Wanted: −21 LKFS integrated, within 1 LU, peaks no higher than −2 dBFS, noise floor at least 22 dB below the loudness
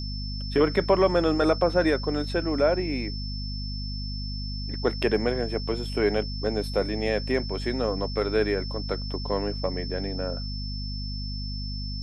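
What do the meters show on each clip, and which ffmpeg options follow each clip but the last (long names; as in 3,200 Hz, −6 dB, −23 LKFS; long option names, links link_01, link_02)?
mains hum 50 Hz; hum harmonics up to 250 Hz; level of the hum −30 dBFS; interfering tone 5,300 Hz; level of the tone −37 dBFS; integrated loudness −27.0 LKFS; sample peak −8.5 dBFS; target loudness −21.0 LKFS
→ -af "bandreject=frequency=50:width_type=h:width=6,bandreject=frequency=100:width_type=h:width=6,bandreject=frequency=150:width_type=h:width=6,bandreject=frequency=200:width_type=h:width=6,bandreject=frequency=250:width_type=h:width=6"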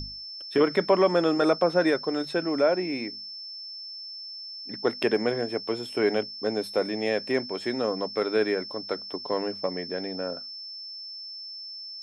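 mains hum none found; interfering tone 5,300 Hz; level of the tone −37 dBFS
→ -af "bandreject=frequency=5300:width=30"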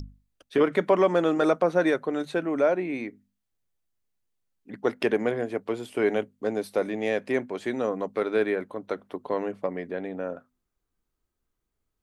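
interfering tone none found; integrated loudness −27.0 LKFS; sample peak −9.5 dBFS; target loudness −21.0 LKFS
→ -af "volume=6dB"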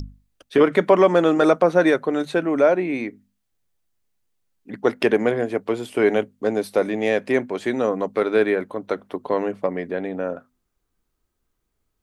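integrated loudness −21.0 LKFS; sample peak −3.5 dBFS; background noise floor −75 dBFS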